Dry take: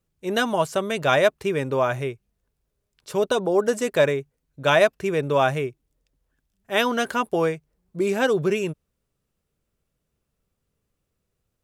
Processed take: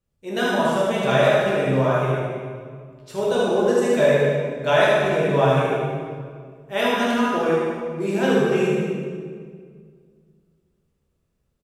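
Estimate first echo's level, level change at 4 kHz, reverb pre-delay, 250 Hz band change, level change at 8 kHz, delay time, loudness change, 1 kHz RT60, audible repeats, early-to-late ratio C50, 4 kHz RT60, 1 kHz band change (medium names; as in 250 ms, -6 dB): -3.0 dB, +1.0 dB, 7 ms, +5.0 dB, -1.0 dB, 76 ms, +2.5 dB, 1.8 s, 1, -3.5 dB, 1.4 s, +2.0 dB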